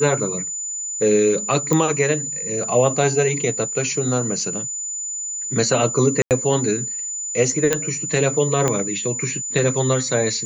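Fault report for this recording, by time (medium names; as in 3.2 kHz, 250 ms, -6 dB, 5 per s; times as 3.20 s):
whine 7 kHz -25 dBFS
1.73 s: pop -6 dBFS
6.22–6.31 s: dropout 88 ms
7.73 s: pop -3 dBFS
8.68 s: pop -6 dBFS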